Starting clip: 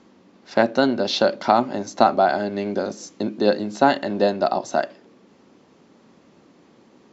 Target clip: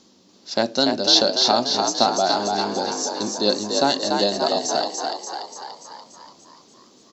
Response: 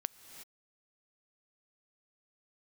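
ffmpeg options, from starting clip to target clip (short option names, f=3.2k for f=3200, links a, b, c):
-filter_complex "[0:a]highshelf=f=3.1k:t=q:w=1.5:g=13,asplit=2[a][b];[b]asplit=8[c][d][e][f][g][h][i][j];[c]adelay=290,afreqshift=55,volume=-4dB[k];[d]adelay=580,afreqshift=110,volume=-8.6dB[l];[e]adelay=870,afreqshift=165,volume=-13.2dB[m];[f]adelay=1160,afreqshift=220,volume=-17.7dB[n];[g]adelay=1450,afreqshift=275,volume=-22.3dB[o];[h]adelay=1740,afreqshift=330,volume=-26.9dB[p];[i]adelay=2030,afreqshift=385,volume=-31.5dB[q];[j]adelay=2320,afreqshift=440,volume=-36.1dB[r];[k][l][m][n][o][p][q][r]amix=inputs=8:normalize=0[s];[a][s]amix=inputs=2:normalize=0,volume=-3.5dB"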